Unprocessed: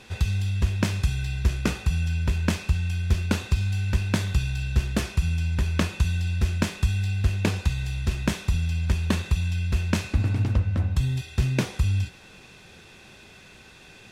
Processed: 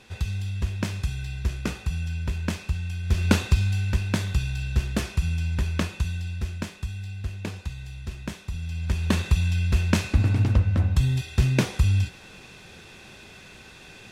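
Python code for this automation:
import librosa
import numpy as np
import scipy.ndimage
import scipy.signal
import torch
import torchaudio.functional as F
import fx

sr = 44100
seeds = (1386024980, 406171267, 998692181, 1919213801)

y = fx.gain(x, sr, db=fx.line((3.02, -4.0), (3.29, 5.0), (4.01, -1.0), (5.61, -1.0), (6.86, -9.0), (8.49, -9.0), (9.2, 2.5)))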